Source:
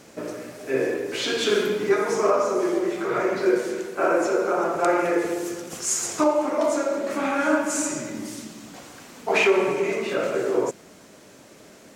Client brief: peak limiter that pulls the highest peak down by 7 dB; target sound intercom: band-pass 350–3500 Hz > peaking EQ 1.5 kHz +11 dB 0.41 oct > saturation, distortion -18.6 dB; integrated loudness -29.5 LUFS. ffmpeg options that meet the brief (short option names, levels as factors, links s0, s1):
-af "alimiter=limit=0.158:level=0:latency=1,highpass=350,lowpass=3500,equalizer=f=1500:t=o:w=0.41:g=11,asoftclip=threshold=0.141,volume=0.708"